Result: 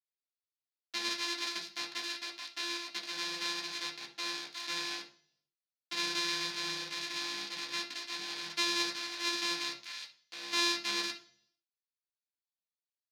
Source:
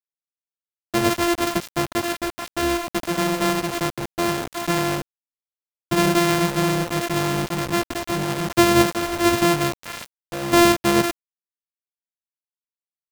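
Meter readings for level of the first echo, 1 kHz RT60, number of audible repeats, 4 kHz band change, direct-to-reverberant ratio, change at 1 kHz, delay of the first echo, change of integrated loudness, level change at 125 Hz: no echo audible, 0.40 s, no echo audible, −4.5 dB, 0.0 dB, −19.0 dB, no echo audible, −13.5 dB, −34.5 dB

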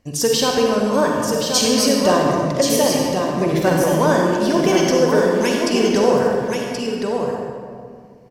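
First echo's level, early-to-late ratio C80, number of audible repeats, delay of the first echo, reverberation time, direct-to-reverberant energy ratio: −5.5 dB, −0.5 dB, 1, 1,077 ms, 2.1 s, −2.5 dB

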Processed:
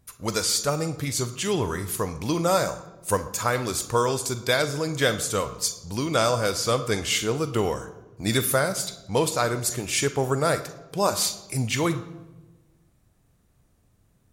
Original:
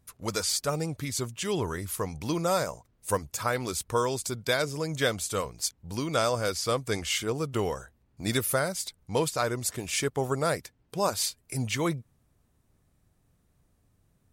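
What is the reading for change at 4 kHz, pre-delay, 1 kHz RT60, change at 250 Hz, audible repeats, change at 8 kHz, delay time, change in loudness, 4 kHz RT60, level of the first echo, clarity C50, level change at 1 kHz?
+4.5 dB, 9 ms, 1.0 s, +4.5 dB, no echo audible, +5.0 dB, no echo audible, +4.5 dB, 0.75 s, no echo audible, 12.5 dB, +4.5 dB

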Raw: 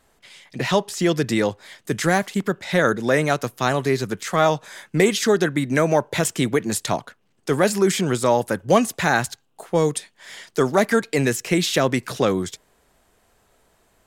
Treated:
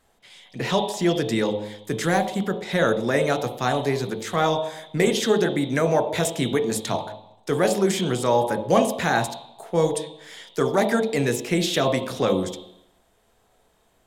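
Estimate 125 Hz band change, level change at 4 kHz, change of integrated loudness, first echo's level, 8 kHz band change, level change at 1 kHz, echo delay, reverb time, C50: −2.5 dB, −1.0 dB, −2.0 dB, no echo audible, −4.0 dB, −1.5 dB, no echo audible, 0.80 s, 8.0 dB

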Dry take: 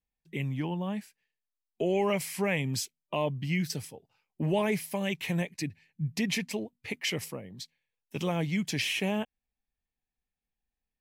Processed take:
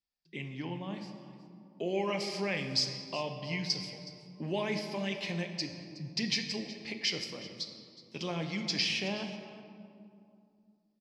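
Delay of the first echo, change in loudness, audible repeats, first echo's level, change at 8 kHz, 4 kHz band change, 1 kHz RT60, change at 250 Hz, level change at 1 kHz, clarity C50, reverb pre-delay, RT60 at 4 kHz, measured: 369 ms, −3.0 dB, 1, −17.5 dB, −4.0 dB, +3.5 dB, 2.5 s, −5.5 dB, −4.5 dB, 6.5 dB, 3 ms, 1.3 s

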